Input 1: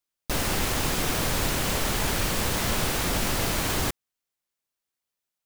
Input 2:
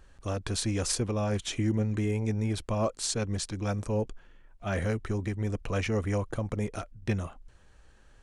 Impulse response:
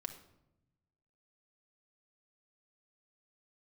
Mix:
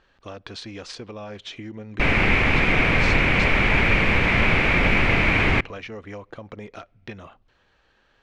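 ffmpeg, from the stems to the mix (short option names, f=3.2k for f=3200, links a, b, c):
-filter_complex "[0:a]lowpass=f=2.3k:t=q:w=6.3,lowshelf=f=490:g=5.5,adelay=1700,volume=1.5dB,asplit=2[a][b];[b]volume=-17.5dB[c];[1:a]lowpass=f=4k:w=0.5412,lowpass=f=4k:w=1.3066,aemphasis=mode=production:type=bsi,acompressor=threshold=-36dB:ratio=3,volume=1dB,asplit=2[d][e];[e]volume=-18.5dB[f];[2:a]atrim=start_sample=2205[g];[c][f]amix=inputs=2:normalize=0[h];[h][g]afir=irnorm=-1:irlink=0[i];[a][d][i]amix=inputs=3:normalize=0"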